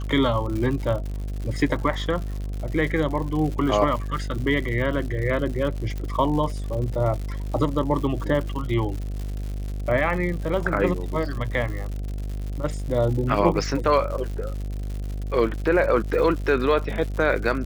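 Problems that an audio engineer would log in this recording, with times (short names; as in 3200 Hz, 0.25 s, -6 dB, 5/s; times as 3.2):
buzz 50 Hz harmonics 15 -29 dBFS
crackle 140/s -31 dBFS
5.98 pop -20 dBFS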